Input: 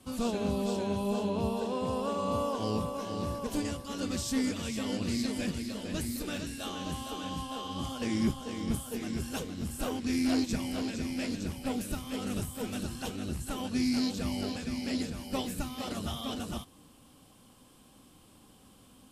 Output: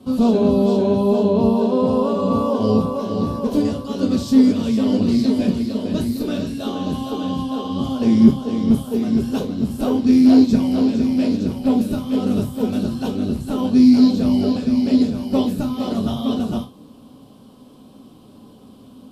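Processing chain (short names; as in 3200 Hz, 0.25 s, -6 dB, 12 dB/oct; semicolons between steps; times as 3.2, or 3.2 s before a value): ten-band EQ 125 Hz +9 dB, 250 Hz +11 dB, 500 Hz +9 dB, 1000 Hz +5 dB, 2000 Hz -5 dB, 4000 Hz +6 dB, 8000 Hz -7 dB; reverb, pre-delay 3 ms, DRR 3.5 dB; gain +1.5 dB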